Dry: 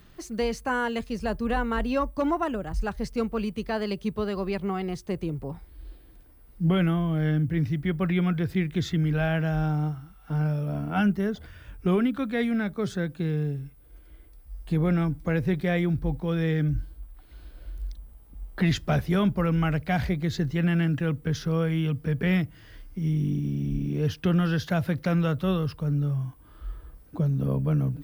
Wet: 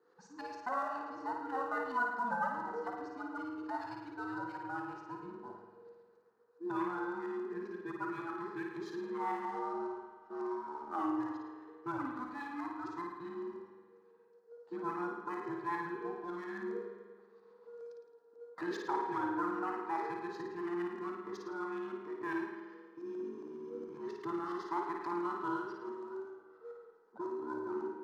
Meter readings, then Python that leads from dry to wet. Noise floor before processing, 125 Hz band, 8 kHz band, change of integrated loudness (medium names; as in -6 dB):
-52 dBFS, -33.0 dB, no reading, -12.5 dB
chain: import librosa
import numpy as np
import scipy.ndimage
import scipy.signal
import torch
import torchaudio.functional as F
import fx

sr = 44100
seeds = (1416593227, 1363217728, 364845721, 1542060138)

p1 = fx.band_invert(x, sr, width_hz=500)
p2 = fx.filter_lfo_lowpass(p1, sr, shape='saw_up', hz=7.3, low_hz=830.0, high_hz=1700.0, q=0.91)
p3 = scipy.signal.sosfilt(scipy.signal.ellip(3, 1.0, 40, [120.0, 7300.0], 'bandpass', fs=sr, output='sos'), p2)
p4 = np.diff(p3, prepend=0.0)
p5 = np.sign(p4) * np.maximum(np.abs(p4) - 10.0 ** (-59.5 / 20.0), 0.0)
p6 = p4 + (p5 * librosa.db_to_amplitude(-6.5))
p7 = fx.band_shelf(p6, sr, hz=2600.0, db=-12.5, octaves=1.0)
p8 = p7 + fx.room_flutter(p7, sr, wall_m=9.4, rt60_s=0.65, dry=0)
p9 = fx.rev_spring(p8, sr, rt60_s=1.7, pass_ms=(45,), chirp_ms=75, drr_db=4.5)
y = p9 * librosa.db_to_amplitude(6.5)